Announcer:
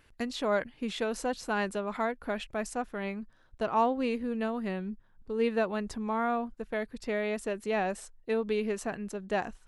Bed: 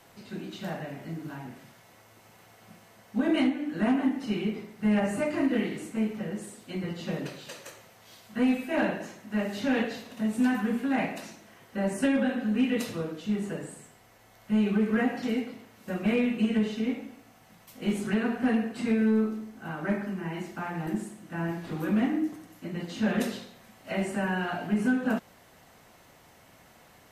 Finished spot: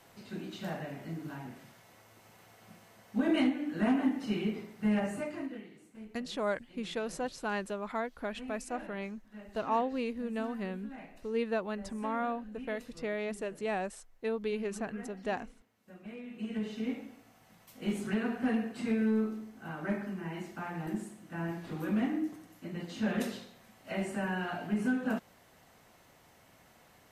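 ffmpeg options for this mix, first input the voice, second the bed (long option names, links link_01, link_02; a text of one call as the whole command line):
ffmpeg -i stem1.wav -i stem2.wav -filter_complex "[0:a]adelay=5950,volume=-4dB[link_01];[1:a]volume=12dB,afade=type=out:start_time=4.76:duration=0.86:silence=0.141254,afade=type=in:start_time=16.24:duration=0.7:silence=0.177828[link_02];[link_01][link_02]amix=inputs=2:normalize=0" out.wav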